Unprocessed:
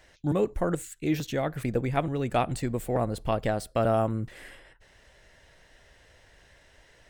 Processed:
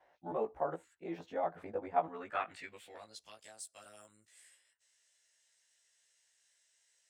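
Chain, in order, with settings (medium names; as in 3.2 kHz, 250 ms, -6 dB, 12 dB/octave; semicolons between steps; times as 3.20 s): short-time spectra conjugated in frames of 37 ms; band-pass sweep 800 Hz -> 7.8 kHz, 1.98–3.41 s; trim +2.5 dB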